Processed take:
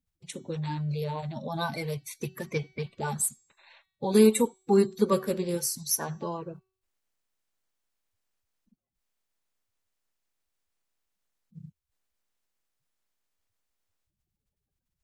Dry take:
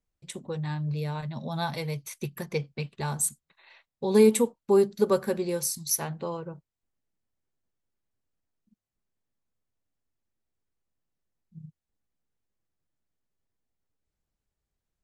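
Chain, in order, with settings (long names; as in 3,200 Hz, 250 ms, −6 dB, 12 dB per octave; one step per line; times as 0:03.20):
spectral magnitudes quantised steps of 30 dB
hum removal 377.8 Hz, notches 21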